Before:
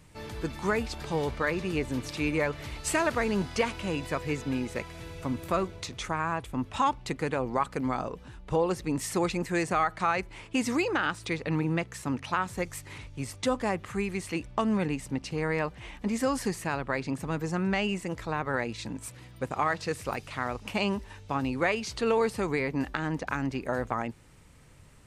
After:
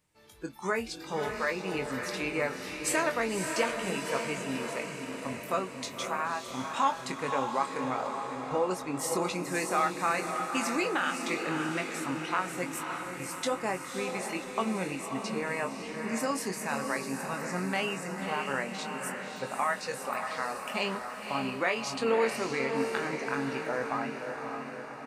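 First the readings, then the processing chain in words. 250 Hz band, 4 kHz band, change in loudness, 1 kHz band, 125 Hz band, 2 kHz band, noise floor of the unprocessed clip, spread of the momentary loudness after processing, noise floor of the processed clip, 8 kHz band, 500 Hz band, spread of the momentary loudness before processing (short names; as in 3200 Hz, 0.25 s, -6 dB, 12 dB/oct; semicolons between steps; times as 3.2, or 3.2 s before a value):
-4.0 dB, +0.5 dB, -1.5 dB, 0.0 dB, -8.0 dB, 0.0 dB, -50 dBFS, 7 LU, -42 dBFS, +2.5 dB, -1.5 dB, 8 LU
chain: low shelf 170 Hz -12 dB; spectral noise reduction 15 dB; high shelf 8300 Hz +5.5 dB; doubler 22 ms -7.5 dB; diffused feedback echo 0.57 s, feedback 59%, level -5 dB; gain -2 dB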